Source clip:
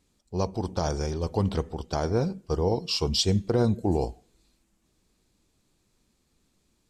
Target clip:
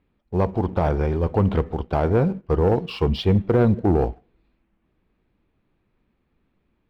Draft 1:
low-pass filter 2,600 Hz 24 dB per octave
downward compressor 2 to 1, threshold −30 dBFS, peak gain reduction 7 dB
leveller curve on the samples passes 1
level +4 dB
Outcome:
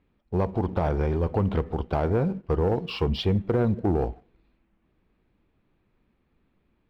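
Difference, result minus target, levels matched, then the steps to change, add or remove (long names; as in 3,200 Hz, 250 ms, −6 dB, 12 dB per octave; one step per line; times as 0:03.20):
downward compressor: peak gain reduction +7 dB
remove: downward compressor 2 to 1, threshold −30 dBFS, peak gain reduction 7 dB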